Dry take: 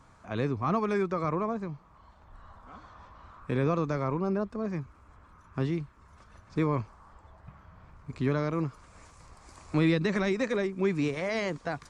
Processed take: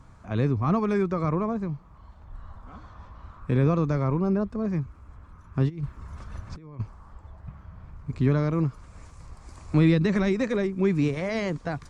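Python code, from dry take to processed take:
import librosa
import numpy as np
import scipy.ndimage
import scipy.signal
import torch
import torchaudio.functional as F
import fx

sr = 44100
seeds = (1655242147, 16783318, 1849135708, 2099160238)

y = fx.low_shelf(x, sr, hz=220.0, db=11.5)
y = fx.over_compress(y, sr, threshold_db=-31.0, ratio=-0.5, at=(5.68, 6.79), fade=0.02)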